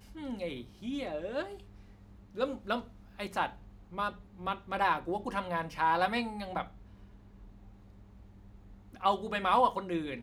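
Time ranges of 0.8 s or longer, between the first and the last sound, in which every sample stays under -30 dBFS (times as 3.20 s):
1.42–2.39 s
6.62–9.04 s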